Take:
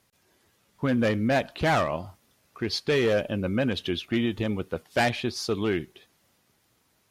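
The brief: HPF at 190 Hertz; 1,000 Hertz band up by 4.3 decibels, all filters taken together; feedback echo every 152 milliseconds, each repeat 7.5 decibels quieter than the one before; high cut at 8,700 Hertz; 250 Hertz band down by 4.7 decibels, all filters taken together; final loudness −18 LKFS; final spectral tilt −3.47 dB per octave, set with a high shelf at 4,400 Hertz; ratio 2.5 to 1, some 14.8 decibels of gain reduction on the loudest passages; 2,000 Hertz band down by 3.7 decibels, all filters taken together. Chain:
high-pass filter 190 Hz
low-pass filter 8,700 Hz
parametric band 250 Hz −4.5 dB
parametric band 1,000 Hz +8.5 dB
parametric band 2,000 Hz −7 dB
high-shelf EQ 4,400 Hz −5 dB
downward compressor 2.5 to 1, threshold −41 dBFS
repeating echo 152 ms, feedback 42%, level −7.5 dB
level +21.5 dB

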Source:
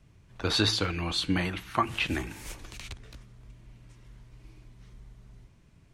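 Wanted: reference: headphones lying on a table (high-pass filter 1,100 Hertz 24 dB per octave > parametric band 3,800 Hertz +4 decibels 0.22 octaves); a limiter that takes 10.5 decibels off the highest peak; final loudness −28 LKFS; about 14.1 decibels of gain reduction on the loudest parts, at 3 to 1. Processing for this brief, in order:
downward compressor 3 to 1, threshold −41 dBFS
brickwall limiter −34 dBFS
high-pass filter 1,100 Hz 24 dB per octave
parametric band 3,800 Hz +4 dB 0.22 octaves
level +18 dB

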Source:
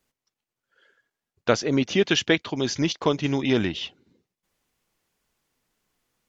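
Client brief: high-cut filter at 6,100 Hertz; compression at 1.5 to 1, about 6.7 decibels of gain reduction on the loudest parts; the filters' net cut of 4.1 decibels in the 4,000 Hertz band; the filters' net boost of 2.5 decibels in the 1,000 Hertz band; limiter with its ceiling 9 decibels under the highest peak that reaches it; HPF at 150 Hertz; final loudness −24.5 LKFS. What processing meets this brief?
high-pass filter 150 Hz
low-pass filter 6,100 Hz
parametric band 1,000 Hz +3.5 dB
parametric band 4,000 Hz −5.5 dB
downward compressor 1.5 to 1, threshold −34 dBFS
level +7.5 dB
brickwall limiter −10.5 dBFS

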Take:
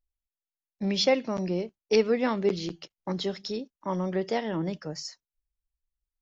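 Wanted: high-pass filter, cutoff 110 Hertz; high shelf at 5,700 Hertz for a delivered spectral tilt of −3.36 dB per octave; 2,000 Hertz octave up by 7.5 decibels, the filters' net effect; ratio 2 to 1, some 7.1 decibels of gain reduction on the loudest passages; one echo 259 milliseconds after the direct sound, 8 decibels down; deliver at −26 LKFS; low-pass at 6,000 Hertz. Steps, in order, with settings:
high-pass filter 110 Hz
low-pass filter 6,000 Hz
parametric band 2,000 Hz +7.5 dB
high-shelf EQ 5,700 Hz +8.5 dB
downward compressor 2 to 1, threshold −29 dBFS
single-tap delay 259 ms −8 dB
level +5.5 dB

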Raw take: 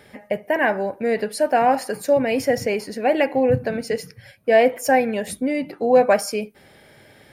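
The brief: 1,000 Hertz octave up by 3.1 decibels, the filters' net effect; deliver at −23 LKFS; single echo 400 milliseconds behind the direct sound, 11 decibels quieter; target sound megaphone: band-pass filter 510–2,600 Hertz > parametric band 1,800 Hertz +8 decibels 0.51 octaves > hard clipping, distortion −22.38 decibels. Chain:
band-pass filter 510–2,600 Hz
parametric band 1,000 Hz +5.5 dB
parametric band 1,800 Hz +8 dB 0.51 octaves
single-tap delay 400 ms −11 dB
hard clipping −6.5 dBFS
level −3.5 dB

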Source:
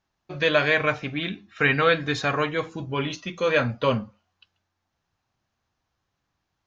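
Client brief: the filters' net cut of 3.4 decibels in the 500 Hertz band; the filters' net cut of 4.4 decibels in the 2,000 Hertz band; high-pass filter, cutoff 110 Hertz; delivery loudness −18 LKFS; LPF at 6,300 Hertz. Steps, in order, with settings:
high-pass filter 110 Hz
low-pass filter 6,300 Hz
parametric band 500 Hz −3.5 dB
parametric band 2,000 Hz −5.5 dB
level +9 dB

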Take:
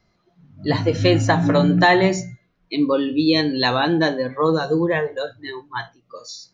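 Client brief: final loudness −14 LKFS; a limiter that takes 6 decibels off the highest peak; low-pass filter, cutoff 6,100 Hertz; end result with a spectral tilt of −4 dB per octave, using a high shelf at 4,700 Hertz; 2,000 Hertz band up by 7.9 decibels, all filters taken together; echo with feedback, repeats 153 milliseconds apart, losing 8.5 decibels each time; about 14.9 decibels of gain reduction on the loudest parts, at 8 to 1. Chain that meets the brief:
low-pass filter 6,100 Hz
parametric band 2,000 Hz +8.5 dB
high-shelf EQ 4,700 Hz +5.5 dB
downward compressor 8 to 1, threshold −21 dBFS
brickwall limiter −16 dBFS
repeating echo 153 ms, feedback 38%, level −8.5 dB
level +12.5 dB

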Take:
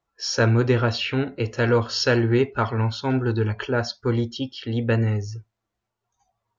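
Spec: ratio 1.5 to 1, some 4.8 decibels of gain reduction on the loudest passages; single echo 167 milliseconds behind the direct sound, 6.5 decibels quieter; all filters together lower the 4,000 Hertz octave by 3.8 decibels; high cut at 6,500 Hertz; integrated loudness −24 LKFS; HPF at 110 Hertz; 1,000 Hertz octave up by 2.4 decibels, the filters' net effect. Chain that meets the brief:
high-pass filter 110 Hz
low-pass filter 6,500 Hz
parametric band 1,000 Hz +3.5 dB
parametric band 4,000 Hz −4.5 dB
downward compressor 1.5 to 1, threshold −28 dBFS
single-tap delay 167 ms −6.5 dB
level +2.5 dB

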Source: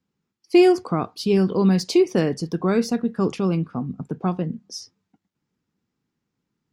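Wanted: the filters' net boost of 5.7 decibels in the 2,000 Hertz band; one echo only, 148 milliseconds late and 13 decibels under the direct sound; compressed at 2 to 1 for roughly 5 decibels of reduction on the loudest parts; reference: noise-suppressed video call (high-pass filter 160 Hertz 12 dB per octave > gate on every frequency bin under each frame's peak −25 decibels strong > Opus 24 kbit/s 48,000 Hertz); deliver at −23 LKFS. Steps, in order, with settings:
parametric band 2,000 Hz +7.5 dB
downward compressor 2 to 1, threshold −19 dBFS
high-pass filter 160 Hz 12 dB per octave
single-tap delay 148 ms −13 dB
gate on every frequency bin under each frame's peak −25 dB strong
level +2 dB
Opus 24 kbit/s 48,000 Hz

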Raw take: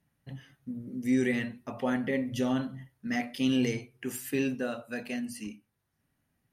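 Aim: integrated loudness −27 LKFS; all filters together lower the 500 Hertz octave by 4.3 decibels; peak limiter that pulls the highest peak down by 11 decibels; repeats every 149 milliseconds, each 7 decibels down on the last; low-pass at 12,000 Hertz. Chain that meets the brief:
low-pass filter 12,000 Hz
parametric band 500 Hz −5.5 dB
brickwall limiter −28.5 dBFS
repeating echo 149 ms, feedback 45%, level −7 dB
level +10.5 dB

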